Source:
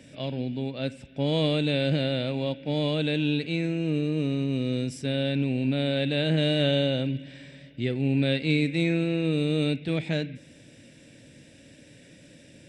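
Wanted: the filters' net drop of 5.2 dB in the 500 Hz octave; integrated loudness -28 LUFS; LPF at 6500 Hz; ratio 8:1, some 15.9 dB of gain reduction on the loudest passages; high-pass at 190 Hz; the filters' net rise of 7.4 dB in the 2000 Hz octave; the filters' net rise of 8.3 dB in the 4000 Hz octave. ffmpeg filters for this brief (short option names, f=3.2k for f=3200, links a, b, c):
-af "highpass=190,lowpass=6.5k,equalizer=f=500:t=o:g=-6.5,equalizer=f=2k:t=o:g=7,equalizer=f=4k:t=o:g=8,acompressor=threshold=-35dB:ratio=8,volume=10.5dB"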